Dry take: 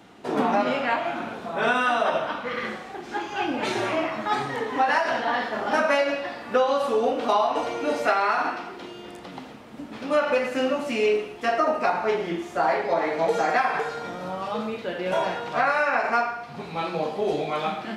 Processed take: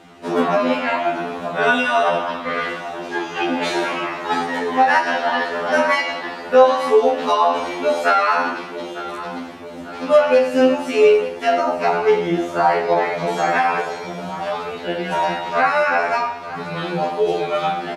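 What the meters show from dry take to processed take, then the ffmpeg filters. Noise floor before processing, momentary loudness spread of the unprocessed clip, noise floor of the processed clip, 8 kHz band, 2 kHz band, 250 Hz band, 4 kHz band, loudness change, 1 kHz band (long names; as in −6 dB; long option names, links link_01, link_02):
−41 dBFS, 11 LU, −32 dBFS, can't be measured, +5.5 dB, +5.5 dB, +5.5 dB, +6.0 dB, +5.5 dB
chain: -af "aecho=1:1:900|1800|2700|3600|4500:0.178|0.0925|0.0481|0.025|0.013,afftfilt=real='re*2*eq(mod(b,4),0)':imag='im*2*eq(mod(b,4),0)':win_size=2048:overlap=0.75,volume=7.5dB"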